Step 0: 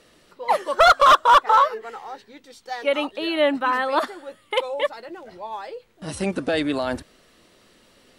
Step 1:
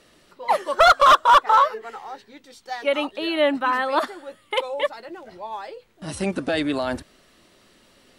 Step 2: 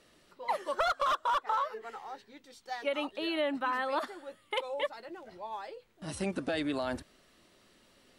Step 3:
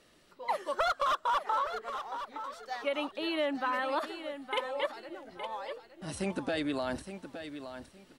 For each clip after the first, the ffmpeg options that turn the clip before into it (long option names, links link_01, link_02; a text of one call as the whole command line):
ffmpeg -i in.wav -af "bandreject=frequency=480:width=12" out.wav
ffmpeg -i in.wav -af "acompressor=threshold=-20dB:ratio=6,volume=-7.5dB" out.wav
ffmpeg -i in.wav -af "aecho=1:1:866|1732|2598:0.316|0.0696|0.0153" out.wav